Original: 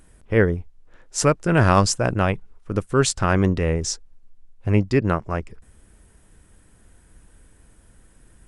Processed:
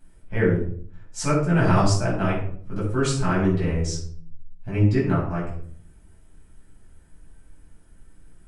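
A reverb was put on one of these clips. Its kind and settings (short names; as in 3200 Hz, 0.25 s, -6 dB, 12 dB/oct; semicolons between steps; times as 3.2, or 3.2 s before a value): shoebox room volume 650 m³, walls furnished, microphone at 8.2 m; gain -15 dB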